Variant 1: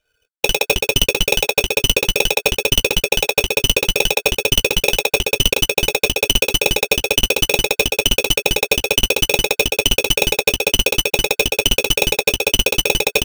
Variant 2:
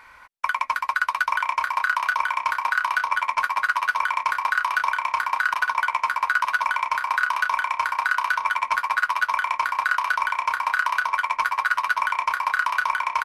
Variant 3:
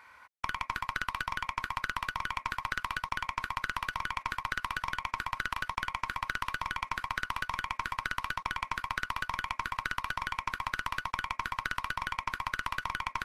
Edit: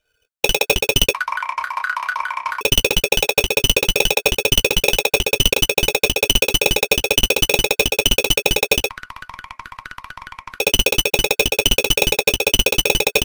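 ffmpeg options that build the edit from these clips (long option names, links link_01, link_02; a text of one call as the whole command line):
ffmpeg -i take0.wav -i take1.wav -i take2.wav -filter_complex "[0:a]asplit=3[link_01][link_02][link_03];[link_01]atrim=end=1.142[link_04];[1:a]atrim=start=1.138:end=2.612[link_05];[link_02]atrim=start=2.608:end=8.902[link_06];[2:a]atrim=start=8.898:end=10.602[link_07];[link_03]atrim=start=10.598[link_08];[link_04][link_05]acrossfade=duration=0.004:curve1=hsin:curve2=hsin[link_09];[link_09][link_06]acrossfade=duration=0.004:curve1=hsin:curve2=hsin[link_10];[link_10][link_07]acrossfade=duration=0.004:curve1=hsin:curve2=hsin[link_11];[link_11][link_08]acrossfade=duration=0.004:curve1=hsin:curve2=hsin" out.wav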